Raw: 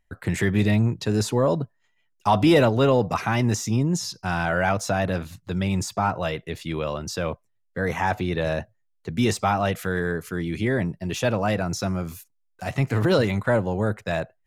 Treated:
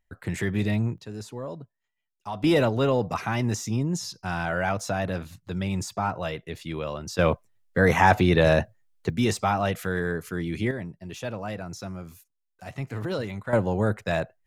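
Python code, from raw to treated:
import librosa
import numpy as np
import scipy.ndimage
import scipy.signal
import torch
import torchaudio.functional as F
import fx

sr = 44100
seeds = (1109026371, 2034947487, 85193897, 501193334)

y = fx.gain(x, sr, db=fx.steps((0.0, -5.0), (0.98, -14.5), (2.44, -4.0), (7.19, 6.0), (9.1, -2.0), (10.71, -10.0), (13.53, 0.0)))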